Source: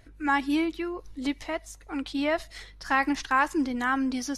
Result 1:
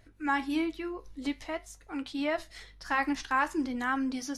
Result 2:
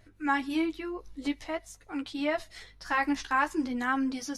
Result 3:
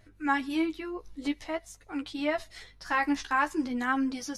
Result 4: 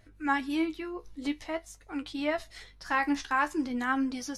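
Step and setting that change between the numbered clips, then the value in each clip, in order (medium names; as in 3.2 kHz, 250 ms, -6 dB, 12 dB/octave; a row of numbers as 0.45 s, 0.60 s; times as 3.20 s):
flange, regen: -68%, -20%, +16%, +48%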